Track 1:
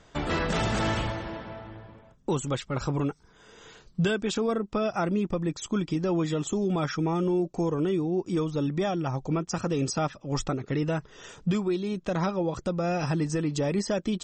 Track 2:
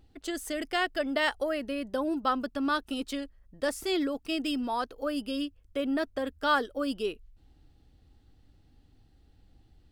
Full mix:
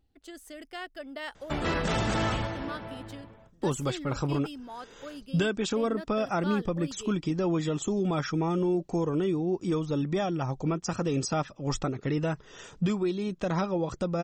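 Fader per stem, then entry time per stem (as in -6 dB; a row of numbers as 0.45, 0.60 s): -1.0, -11.0 dB; 1.35, 0.00 s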